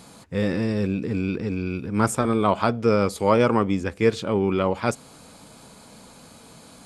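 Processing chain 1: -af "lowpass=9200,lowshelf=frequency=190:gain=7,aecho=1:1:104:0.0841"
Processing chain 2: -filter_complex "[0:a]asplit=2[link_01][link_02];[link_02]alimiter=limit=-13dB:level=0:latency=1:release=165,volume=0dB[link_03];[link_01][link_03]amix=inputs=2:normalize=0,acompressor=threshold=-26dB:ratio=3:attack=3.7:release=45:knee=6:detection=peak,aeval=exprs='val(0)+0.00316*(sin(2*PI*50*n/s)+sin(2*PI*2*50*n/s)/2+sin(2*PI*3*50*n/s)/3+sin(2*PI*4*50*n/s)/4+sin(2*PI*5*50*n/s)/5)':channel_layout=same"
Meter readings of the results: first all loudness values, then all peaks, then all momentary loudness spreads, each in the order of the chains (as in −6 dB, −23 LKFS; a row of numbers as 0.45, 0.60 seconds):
−21.0, −27.0 LKFS; −4.0, −10.5 dBFS; 6, 14 LU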